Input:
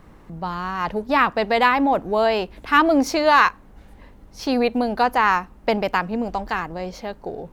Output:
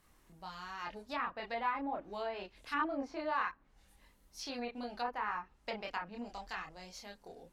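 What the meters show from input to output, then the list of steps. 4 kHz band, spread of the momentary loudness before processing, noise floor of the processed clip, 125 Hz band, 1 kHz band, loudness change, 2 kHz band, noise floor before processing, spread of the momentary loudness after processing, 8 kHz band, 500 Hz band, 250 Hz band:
-17.5 dB, 14 LU, -68 dBFS, under -20 dB, -18.5 dB, -19.5 dB, -19.0 dB, -48 dBFS, 14 LU, -16.0 dB, -21.0 dB, -21.0 dB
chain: pre-emphasis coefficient 0.9; chorus voices 4, 0.43 Hz, delay 27 ms, depth 2.2 ms; treble ducked by the level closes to 1400 Hz, closed at -33 dBFS

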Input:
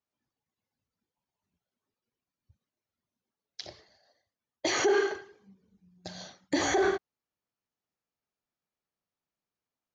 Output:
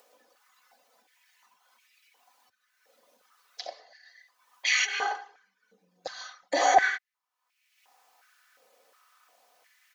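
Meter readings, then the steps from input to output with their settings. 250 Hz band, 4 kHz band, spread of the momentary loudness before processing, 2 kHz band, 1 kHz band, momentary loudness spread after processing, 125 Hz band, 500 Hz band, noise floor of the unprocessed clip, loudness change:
-12.5 dB, +4.5 dB, 20 LU, +6.0 dB, +8.5 dB, 20 LU, under -15 dB, -4.5 dB, under -85 dBFS, +1.0 dB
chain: comb 4 ms, depth 63%; upward compressor, threshold -46 dBFS; stepped high-pass 2.8 Hz 530–2300 Hz

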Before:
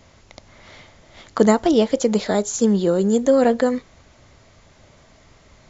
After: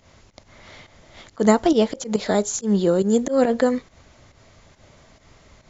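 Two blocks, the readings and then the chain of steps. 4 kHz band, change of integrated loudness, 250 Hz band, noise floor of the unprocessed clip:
-1.5 dB, -2.0 dB, -1.5 dB, -52 dBFS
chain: auto swell 0.116 s; pump 139 bpm, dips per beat 1, -11 dB, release 0.122 s

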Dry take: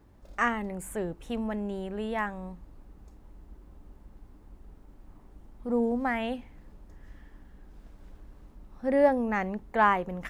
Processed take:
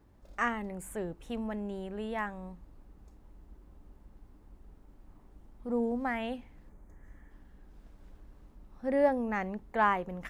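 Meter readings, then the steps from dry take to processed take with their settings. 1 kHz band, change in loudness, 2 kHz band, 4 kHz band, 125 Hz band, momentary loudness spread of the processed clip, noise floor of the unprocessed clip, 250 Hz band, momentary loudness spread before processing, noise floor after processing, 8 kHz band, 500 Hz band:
-4.0 dB, -4.0 dB, -4.0 dB, -4.0 dB, -4.0 dB, 12 LU, -55 dBFS, -4.0 dB, 12 LU, -59 dBFS, n/a, -4.0 dB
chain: spectral gain 6.69–7.31, 2400–5900 Hz -9 dB; gain -4 dB

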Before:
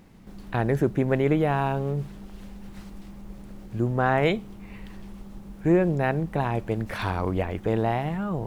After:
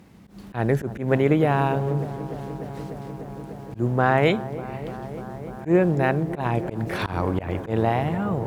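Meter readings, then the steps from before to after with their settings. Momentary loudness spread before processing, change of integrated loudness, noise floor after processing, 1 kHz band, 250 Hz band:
21 LU, +1.5 dB, -41 dBFS, +3.0 dB, +2.0 dB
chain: HPF 53 Hz 24 dB/oct; added harmonics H 7 -44 dB, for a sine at -9 dBFS; dark delay 0.297 s, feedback 85%, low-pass 1200 Hz, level -14.5 dB; auto swell 0.109 s; gain +3 dB

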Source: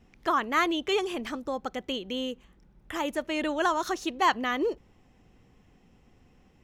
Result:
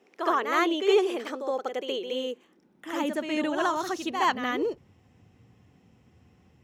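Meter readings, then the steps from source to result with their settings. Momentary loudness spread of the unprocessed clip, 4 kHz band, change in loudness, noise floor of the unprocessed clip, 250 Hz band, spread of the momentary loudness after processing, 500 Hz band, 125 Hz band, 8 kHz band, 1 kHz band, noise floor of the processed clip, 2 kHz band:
9 LU, -0.5 dB, +1.5 dB, -62 dBFS, +1.5 dB, 11 LU, +4.0 dB, n/a, -0.5 dB, 0.0 dB, -63 dBFS, -0.5 dB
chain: reverse echo 69 ms -6.5 dB; high-pass sweep 410 Hz -> 98 Hz, 2.18–4.07; gain -1.5 dB

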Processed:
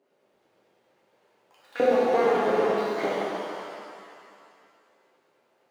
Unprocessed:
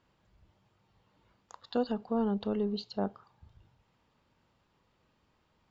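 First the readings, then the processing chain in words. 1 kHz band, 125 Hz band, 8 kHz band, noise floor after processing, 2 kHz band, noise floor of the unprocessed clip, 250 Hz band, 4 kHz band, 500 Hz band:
+14.0 dB, -2.5 dB, n/a, -69 dBFS, +19.5 dB, -73 dBFS, 0.0 dB, +5.0 dB, +12.5 dB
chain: median filter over 41 samples; LFO high-pass saw up 8.9 Hz 340–4000 Hz; shimmer reverb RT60 2.3 s, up +7 st, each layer -8 dB, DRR -9 dB; gain +3.5 dB

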